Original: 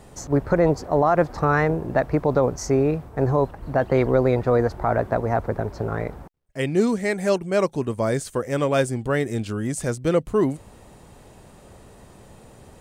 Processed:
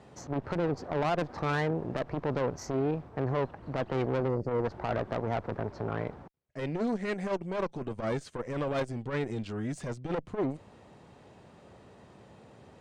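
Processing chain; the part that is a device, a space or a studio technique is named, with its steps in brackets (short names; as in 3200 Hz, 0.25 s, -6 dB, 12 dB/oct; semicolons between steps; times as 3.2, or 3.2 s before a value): spectral gain 4.28–4.64, 600–4300 Hz -25 dB; valve radio (BPF 99–4500 Hz; tube stage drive 21 dB, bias 0.6; core saturation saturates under 240 Hz); gain -2.5 dB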